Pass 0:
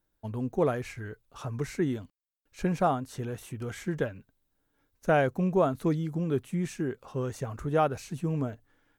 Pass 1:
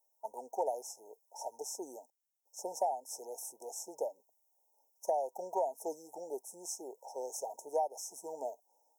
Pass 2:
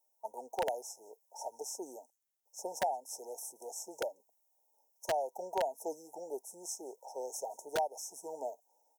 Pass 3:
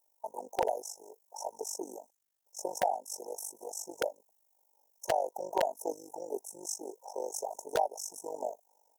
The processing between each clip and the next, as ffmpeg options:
ffmpeg -i in.wav -af "highpass=frequency=660:width=0.5412,highpass=frequency=660:width=1.3066,afftfilt=real='re*(1-between(b*sr/4096,950,5200))':imag='im*(1-between(b*sr/4096,950,5200))':win_size=4096:overlap=0.75,acompressor=threshold=-35dB:ratio=10,volume=6dB" out.wav
ffmpeg -i in.wav -filter_complex "[0:a]acrossover=split=640|4800[link_01][link_02][link_03];[link_01]aeval=exprs='(mod(29.9*val(0)+1,2)-1)/29.9':channel_layout=same[link_04];[link_03]aecho=1:1:176:0.0794[link_05];[link_04][link_02][link_05]amix=inputs=3:normalize=0" out.wav
ffmpeg -i in.wav -af "tremolo=f=49:d=0.889,volume=7dB" out.wav

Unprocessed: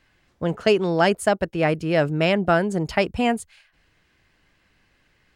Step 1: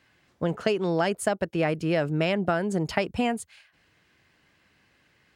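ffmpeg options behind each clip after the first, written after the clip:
ffmpeg -i in.wav -af "acompressor=threshold=-21dB:ratio=6,highpass=88" out.wav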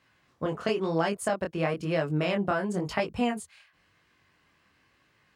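ffmpeg -i in.wav -af "equalizer=frequency=1100:width_type=o:width=0.31:gain=7,flanger=delay=18.5:depth=7.5:speed=0.98" out.wav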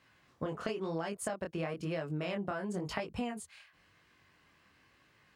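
ffmpeg -i in.wav -af "acompressor=threshold=-34dB:ratio=5" out.wav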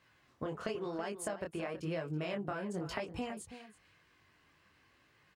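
ffmpeg -i in.wav -filter_complex "[0:a]flanger=delay=1.8:depth=1.4:regen=-72:speed=1.5:shape=triangular,asplit=2[link_01][link_02];[link_02]adelay=326.5,volume=-12dB,highshelf=frequency=4000:gain=-7.35[link_03];[link_01][link_03]amix=inputs=2:normalize=0,volume=2.5dB" out.wav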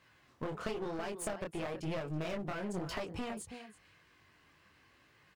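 ffmpeg -i in.wav -af "aeval=exprs='clip(val(0),-1,0.0075)':channel_layout=same,volume=2.5dB" out.wav

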